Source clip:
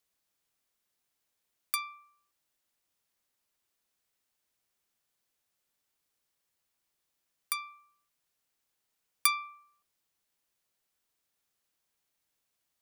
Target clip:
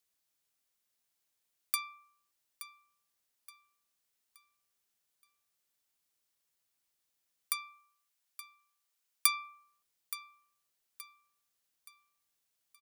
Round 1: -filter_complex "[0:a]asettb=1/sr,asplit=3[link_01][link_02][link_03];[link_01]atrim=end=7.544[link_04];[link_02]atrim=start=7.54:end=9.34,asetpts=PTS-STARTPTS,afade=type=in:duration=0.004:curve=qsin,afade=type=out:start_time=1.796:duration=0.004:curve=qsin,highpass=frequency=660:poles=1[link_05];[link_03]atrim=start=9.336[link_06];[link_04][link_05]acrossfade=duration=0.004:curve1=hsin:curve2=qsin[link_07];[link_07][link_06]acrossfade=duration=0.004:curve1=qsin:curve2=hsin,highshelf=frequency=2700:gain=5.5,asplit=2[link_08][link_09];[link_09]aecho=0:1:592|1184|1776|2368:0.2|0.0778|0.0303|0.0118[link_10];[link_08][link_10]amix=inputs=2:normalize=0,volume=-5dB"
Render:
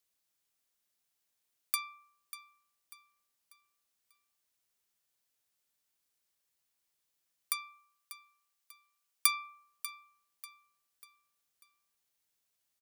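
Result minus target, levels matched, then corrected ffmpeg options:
echo 281 ms early
-filter_complex "[0:a]asettb=1/sr,asplit=3[link_01][link_02][link_03];[link_01]atrim=end=7.544[link_04];[link_02]atrim=start=7.54:end=9.34,asetpts=PTS-STARTPTS,afade=type=in:duration=0.004:curve=qsin,afade=type=out:start_time=1.796:duration=0.004:curve=qsin,highpass=frequency=660:poles=1[link_05];[link_03]atrim=start=9.336[link_06];[link_04][link_05]acrossfade=duration=0.004:curve1=hsin:curve2=qsin[link_07];[link_07][link_06]acrossfade=duration=0.004:curve1=qsin:curve2=hsin,highshelf=frequency=2700:gain=5.5,asplit=2[link_08][link_09];[link_09]aecho=0:1:873|1746|2619|3492:0.2|0.0778|0.0303|0.0118[link_10];[link_08][link_10]amix=inputs=2:normalize=0,volume=-5dB"

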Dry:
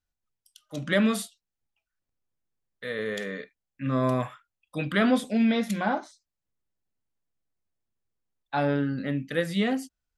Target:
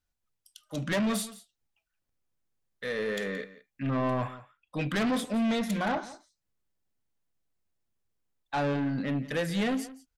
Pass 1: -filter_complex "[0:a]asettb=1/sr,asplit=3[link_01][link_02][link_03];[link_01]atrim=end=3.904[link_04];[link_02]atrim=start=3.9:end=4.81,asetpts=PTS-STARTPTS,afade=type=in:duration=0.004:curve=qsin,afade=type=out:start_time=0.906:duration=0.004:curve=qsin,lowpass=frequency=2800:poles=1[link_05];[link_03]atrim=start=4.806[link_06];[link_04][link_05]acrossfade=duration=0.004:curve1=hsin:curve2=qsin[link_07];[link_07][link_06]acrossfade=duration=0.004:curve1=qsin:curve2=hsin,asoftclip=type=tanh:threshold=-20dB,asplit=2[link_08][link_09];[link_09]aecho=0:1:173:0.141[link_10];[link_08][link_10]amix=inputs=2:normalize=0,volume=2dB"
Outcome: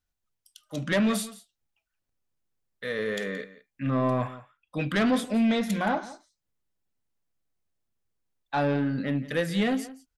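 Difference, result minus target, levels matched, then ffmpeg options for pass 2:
soft clipping: distortion −6 dB
-filter_complex "[0:a]asettb=1/sr,asplit=3[link_01][link_02][link_03];[link_01]atrim=end=3.904[link_04];[link_02]atrim=start=3.9:end=4.81,asetpts=PTS-STARTPTS,afade=type=in:duration=0.004:curve=qsin,afade=type=out:start_time=0.906:duration=0.004:curve=qsin,lowpass=frequency=2800:poles=1[link_05];[link_03]atrim=start=4.806[link_06];[link_04][link_05]acrossfade=duration=0.004:curve1=hsin:curve2=qsin[link_07];[link_07][link_06]acrossfade=duration=0.004:curve1=qsin:curve2=hsin,asoftclip=type=tanh:threshold=-26.5dB,asplit=2[link_08][link_09];[link_09]aecho=0:1:173:0.141[link_10];[link_08][link_10]amix=inputs=2:normalize=0,volume=2dB"

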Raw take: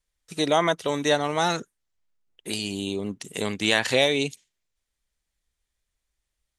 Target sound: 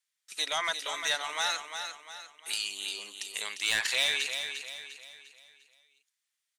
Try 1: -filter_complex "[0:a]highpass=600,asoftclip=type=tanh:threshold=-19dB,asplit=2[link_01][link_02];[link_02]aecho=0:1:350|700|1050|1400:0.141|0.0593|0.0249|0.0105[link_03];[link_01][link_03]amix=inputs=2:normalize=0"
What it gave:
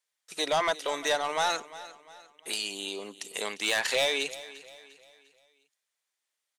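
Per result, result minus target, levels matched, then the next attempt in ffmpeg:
500 Hz band +10.0 dB; echo-to-direct −9.5 dB
-filter_complex "[0:a]highpass=1500,asoftclip=type=tanh:threshold=-19dB,asplit=2[link_01][link_02];[link_02]aecho=0:1:350|700|1050|1400:0.141|0.0593|0.0249|0.0105[link_03];[link_01][link_03]amix=inputs=2:normalize=0"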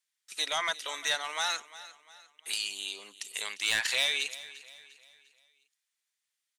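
echo-to-direct −9.5 dB
-filter_complex "[0:a]highpass=1500,asoftclip=type=tanh:threshold=-19dB,asplit=2[link_01][link_02];[link_02]aecho=0:1:350|700|1050|1400|1750:0.422|0.177|0.0744|0.0312|0.0131[link_03];[link_01][link_03]amix=inputs=2:normalize=0"

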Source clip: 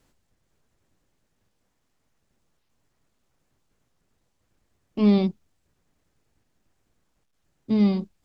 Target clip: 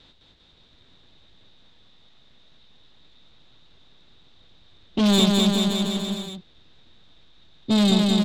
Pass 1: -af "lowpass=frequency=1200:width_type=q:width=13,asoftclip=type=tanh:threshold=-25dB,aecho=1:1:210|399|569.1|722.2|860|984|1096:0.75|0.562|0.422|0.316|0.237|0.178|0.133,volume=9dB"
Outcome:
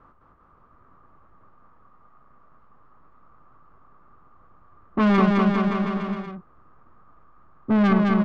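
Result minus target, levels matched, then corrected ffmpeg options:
4,000 Hz band −17.0 dB
-af "lowpass=frequency=3700:width_type=q:width=13,asoftclip=type=tanh:threshold=-25dB,aecho=1:1:210|399|569.1|722.2|860|984|1096:0.75|0.562|0.422|0.316|0.237|0.178|0.133,volume=9dB"

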